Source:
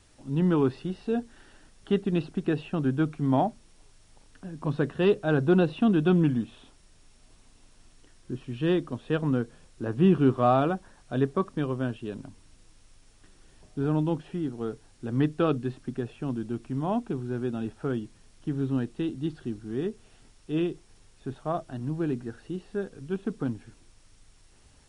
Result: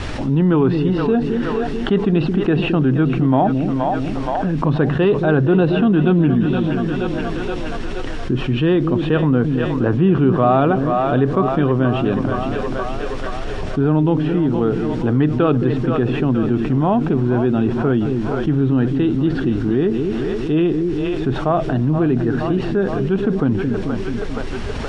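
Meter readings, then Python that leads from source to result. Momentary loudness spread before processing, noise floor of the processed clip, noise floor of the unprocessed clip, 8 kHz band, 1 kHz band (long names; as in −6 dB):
14 LU, −24 dBFS, −58 dBFS, can't be measured, +11.0 dB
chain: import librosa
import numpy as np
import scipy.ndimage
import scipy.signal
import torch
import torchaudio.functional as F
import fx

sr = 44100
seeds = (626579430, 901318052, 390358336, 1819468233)

y = scipy.signal.sosfilt(scipy.signal.butter(2, 3100.0, 'lowpass', fs=sr, output='sos'), x)
y = fx.echo_split(y, sr, split_hz=440.0, low_ms=218, high_ms=473, feedback_pct=52, wet_db=-12)
y = fx.env_flatten(y, sr, amount_pct=70)
y = F.gain(torch.from_numpy(y), 4.5).numpy()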